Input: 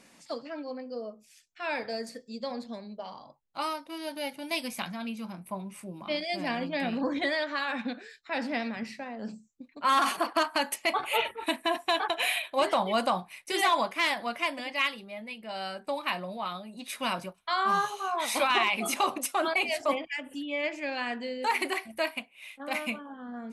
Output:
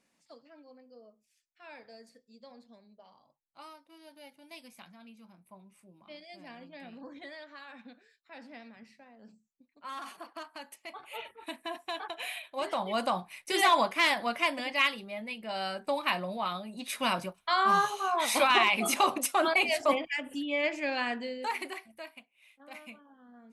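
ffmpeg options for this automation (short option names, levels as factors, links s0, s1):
-af "volume=1.19,afade=t=in:st=10.98:d=0.67:silence=0.446684,afade=t=in:st=12.5:d=1.23:silence=0.266073,afade=t=out:st=20.99:d=0.56:silence=0.375837,afade=t=out:st=21.55:d=0.47:silence=0.398107"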